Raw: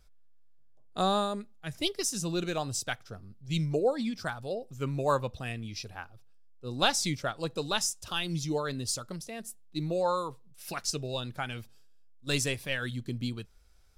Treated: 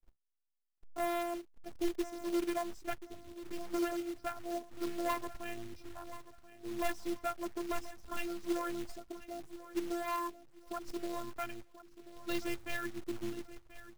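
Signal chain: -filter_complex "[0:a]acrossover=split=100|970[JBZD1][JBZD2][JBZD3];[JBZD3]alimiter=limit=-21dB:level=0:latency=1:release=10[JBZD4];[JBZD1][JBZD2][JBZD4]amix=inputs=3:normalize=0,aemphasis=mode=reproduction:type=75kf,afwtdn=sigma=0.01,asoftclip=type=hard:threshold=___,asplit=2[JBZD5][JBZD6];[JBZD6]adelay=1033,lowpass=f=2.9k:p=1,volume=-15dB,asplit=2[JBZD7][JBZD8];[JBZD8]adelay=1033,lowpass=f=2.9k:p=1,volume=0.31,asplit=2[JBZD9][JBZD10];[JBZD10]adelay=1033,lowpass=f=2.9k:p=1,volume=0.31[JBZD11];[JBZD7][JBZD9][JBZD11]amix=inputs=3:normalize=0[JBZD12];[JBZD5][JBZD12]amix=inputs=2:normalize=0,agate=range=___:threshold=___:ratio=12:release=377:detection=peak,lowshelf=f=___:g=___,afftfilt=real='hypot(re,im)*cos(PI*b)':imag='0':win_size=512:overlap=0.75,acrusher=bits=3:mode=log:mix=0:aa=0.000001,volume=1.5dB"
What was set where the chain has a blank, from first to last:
-27dB, -19dB, -60dB, 88, 4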